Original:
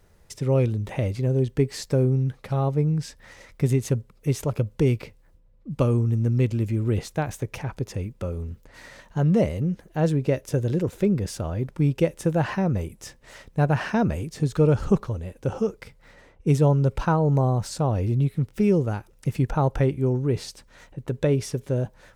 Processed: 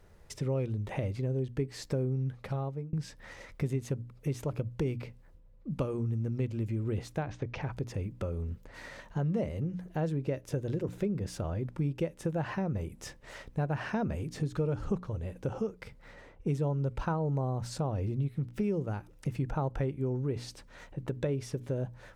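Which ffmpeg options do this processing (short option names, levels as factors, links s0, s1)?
-filter_complex "[0:a]asettb=1/sr,asplit=3[s0][s1][s2];[s0]atrim=end=7.224[s3];[s1]atrim=start=7.22:end=7.63,asetpts=PTS-STARTPTS,afade=t=in:d=0.004:c=qsin,afade=t=out:st=0.406:d=0.004:c=qsin,lowpass=f=5200:w=0.5412,lowpass=f=5200:w=1.3066[s4];[s2]atrim=start=7.626[s5];[s3][s4]acrossfade=d=0.004:c1=hsin:c2=qsin[s6];[s6][s5]acrossfade=d=0.004:c1=qsin:c2=hsin,asplit=2[s7][s8];[s7]atrim=end=2.93,asetpts=PTS-STARTPTS,afade=t=out:st=2.39:d=0.54[s9];[s8]atrim=start=2.93,asetpts=PTS-STARTPTS,afade=t=in:d=0.004:c=hsin[s10];[s9][s10]concat=n=2:v=0:a=1,highshelf=f=4400:g=-7,bandreject=f=60:t=h:w=6,bandreject=f=120:t=h:w=6,bandreject=f=180:t=h:w=6,bandreject=f=240:t=h:w=6,bandreject=f=300:t=h:w=6,acompressor=threshold=0.0224:ratio=2.5"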